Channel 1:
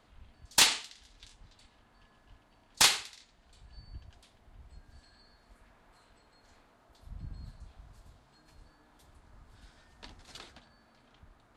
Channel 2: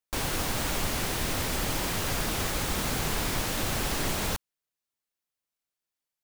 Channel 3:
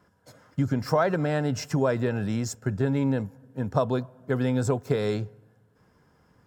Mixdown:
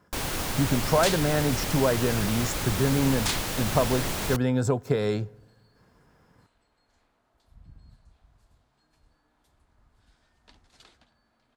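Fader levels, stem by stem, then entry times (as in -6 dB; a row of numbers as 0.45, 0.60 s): -7.0, -0.5, +0.5 dB; 0.45, 0.00, 0.00 s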